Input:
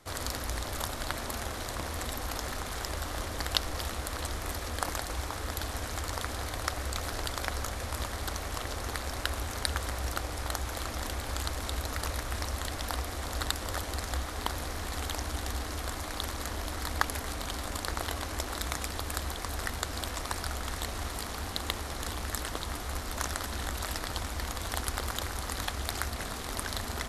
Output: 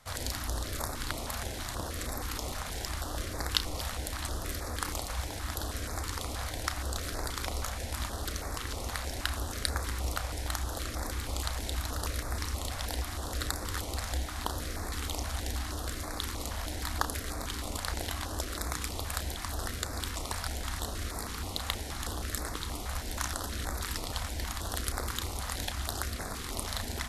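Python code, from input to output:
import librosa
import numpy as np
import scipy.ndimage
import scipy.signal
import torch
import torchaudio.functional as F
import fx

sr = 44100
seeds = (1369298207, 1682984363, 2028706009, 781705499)

y = fx.doubler(x, sr, ms=33.0, db=-12.0)
y = fx.filter_held_notch(y, sr, hz=6.3, low_hz=350.0, high_hz=3000.0)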